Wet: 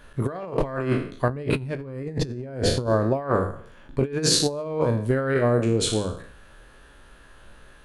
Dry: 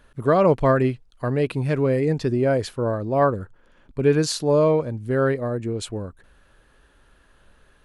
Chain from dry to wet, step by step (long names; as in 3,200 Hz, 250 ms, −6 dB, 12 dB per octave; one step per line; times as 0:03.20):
peak hold with a decay on every bin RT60 0.56 s
0:01.29–0:02.87: low-shelf EQ 300 Hz +10 dB
mains-hum notches 50/100/150/200/250/300/350/400/450/500 Hz
compressor whose output falls as the input rises −23 dBFS, ratio −0.5